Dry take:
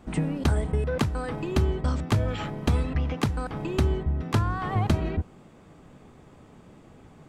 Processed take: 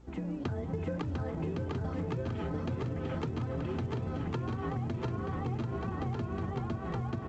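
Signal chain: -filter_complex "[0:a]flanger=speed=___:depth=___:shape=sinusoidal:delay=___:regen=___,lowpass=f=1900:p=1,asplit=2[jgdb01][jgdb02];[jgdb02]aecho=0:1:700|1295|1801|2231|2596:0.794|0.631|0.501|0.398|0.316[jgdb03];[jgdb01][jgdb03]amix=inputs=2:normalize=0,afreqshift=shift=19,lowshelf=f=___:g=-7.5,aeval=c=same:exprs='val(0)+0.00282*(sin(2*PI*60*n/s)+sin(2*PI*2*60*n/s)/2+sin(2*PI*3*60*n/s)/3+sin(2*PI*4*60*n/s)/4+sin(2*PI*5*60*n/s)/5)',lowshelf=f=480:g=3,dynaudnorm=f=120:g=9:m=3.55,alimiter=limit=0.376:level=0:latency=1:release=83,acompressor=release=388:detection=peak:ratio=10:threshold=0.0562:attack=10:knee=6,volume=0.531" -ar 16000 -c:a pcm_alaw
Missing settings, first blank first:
0.92, 7.1, 2.2, 30, 61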